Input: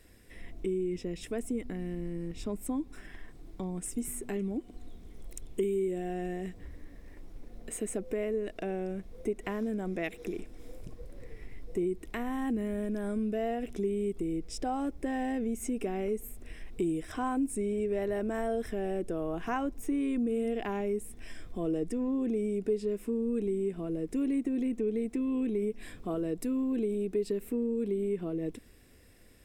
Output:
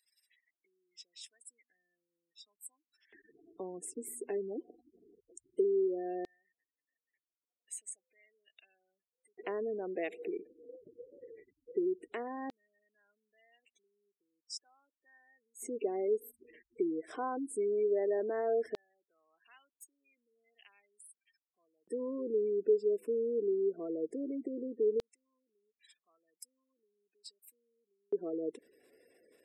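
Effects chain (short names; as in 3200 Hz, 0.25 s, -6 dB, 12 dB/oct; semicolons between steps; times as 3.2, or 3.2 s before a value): spectral gate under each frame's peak -25 dB strong; LFO high-pass square 0.16 Hz 430–4300 Hz; gain -5 dB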